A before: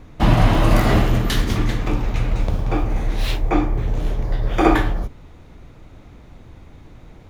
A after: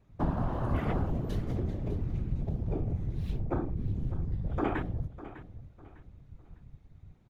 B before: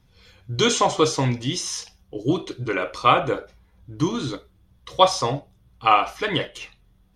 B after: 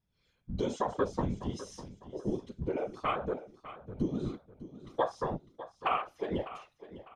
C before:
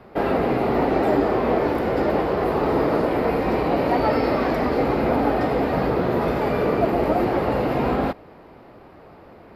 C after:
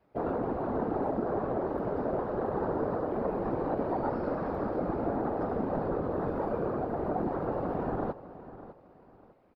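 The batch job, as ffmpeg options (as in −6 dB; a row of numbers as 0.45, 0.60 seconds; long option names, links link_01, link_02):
-af "afwtdn=0.0794,acompressor=threshold=-23dB:ratio=3,afftfilt=real='hypot(re,im)*cos(2*PI*random(0))':imag='hypot(re,im)*sin(2*PI*random(1))':win_size=512:overlap=0.75,aecho=1:1:602|1204|1806:0.178|0.0551|0.0171"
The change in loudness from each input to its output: −13.5, −13.0, −10.5 LU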